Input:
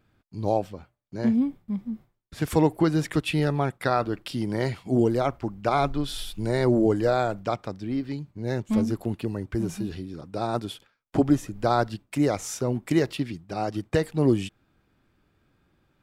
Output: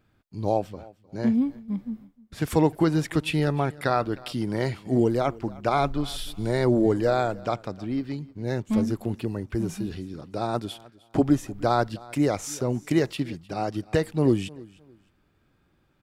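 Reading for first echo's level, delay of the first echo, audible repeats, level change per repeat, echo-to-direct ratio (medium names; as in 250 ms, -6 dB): -22.0 dB, 307 ms, 2, -11.5 dB, -21.5 dB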